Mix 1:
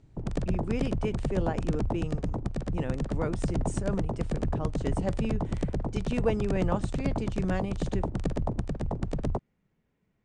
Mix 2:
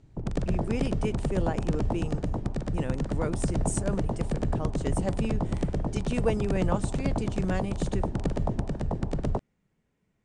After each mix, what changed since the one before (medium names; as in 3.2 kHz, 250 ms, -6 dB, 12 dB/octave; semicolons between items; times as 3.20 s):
speech: remove distance through air 86 m; reverb: on, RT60 0.85 s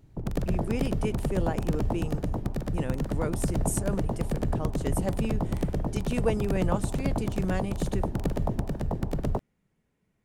master: remove steep low-pass 9.2 kHz 48 dB/octave